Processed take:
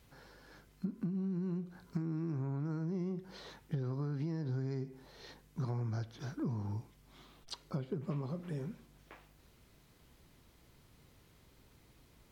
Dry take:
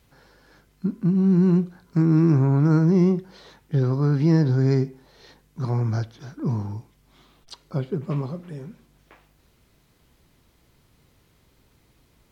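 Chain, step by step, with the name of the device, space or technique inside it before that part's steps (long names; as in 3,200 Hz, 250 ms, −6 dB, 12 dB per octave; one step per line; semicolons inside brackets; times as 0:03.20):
serial compression, leveller first (downward compressor 3 to 1, threshold −20 dBFS, peak gain reduction 6 dB; downward compressor 10 to 1, threshold −31 dBFS, peak gain reduction 13 dB)
level −3 dB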